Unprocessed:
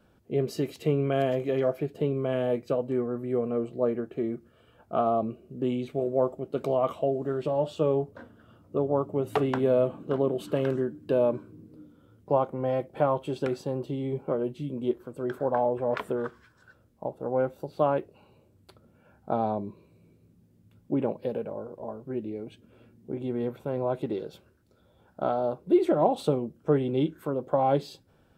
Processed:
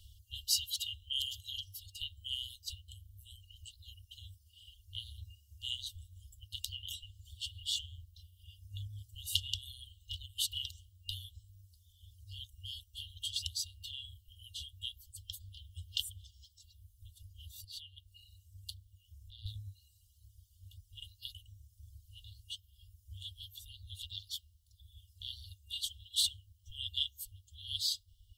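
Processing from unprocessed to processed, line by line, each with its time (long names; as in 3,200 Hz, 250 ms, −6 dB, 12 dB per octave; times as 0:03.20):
0:17.64–0:19.46: downward compressor 1.5 to 1, threshold −43 dBFS
whole clip: reverb reduction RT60 1.3 s; brick-wall band-stop 100–2,800 Hz; level +14 dB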